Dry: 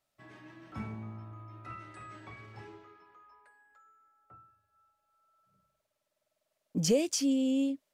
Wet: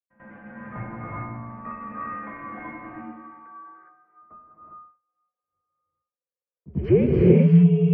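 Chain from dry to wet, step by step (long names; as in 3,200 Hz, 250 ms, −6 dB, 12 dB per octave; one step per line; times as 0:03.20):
downward expander −58 dBFS
low-shelf EQ 260 Hz +5.5 dB
echo ahead of the sound 92 ms −17.5 dB
reverb whose tail is shaped and stops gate 430 ms rising, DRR −3.5 dB
single-sideband voice off tune −100 Hz 230–2,200 Hz
level +7.5 dB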